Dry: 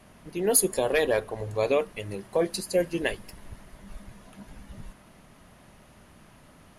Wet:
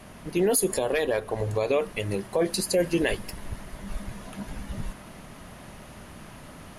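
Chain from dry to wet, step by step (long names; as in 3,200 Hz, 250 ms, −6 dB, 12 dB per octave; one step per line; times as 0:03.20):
0:00.73–0:01.71: downward compressor, threshold −27 dBFS, peak gain reduction 8 dB
brickwall limiter −22 dBFS, peak gain reduction 11.5 dB
speech leveller within 4 dB 2 s
level +6 dB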